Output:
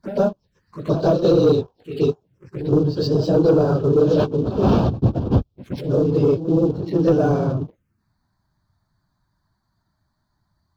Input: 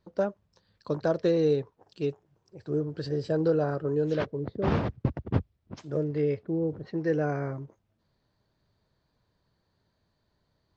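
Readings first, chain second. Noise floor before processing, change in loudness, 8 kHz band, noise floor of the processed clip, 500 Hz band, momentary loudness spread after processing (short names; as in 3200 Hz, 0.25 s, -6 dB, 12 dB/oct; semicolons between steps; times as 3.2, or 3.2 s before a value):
-75 dBFS, +10.5 dB, n/a, -72 dBFS, +10.0 dB, 13 LU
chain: phase scrambler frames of 50 ms; sample leveller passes 2; in parallel at -1 dB: compressor, threshold -34 dBFS, peak gain reduction 17 dB; on the sum: reverse echo 0.121 s -11.5 dB; envelope phaser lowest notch 470 Hz, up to 2000 Hz, full sweep at -23 dBFS; gain +3.5 dB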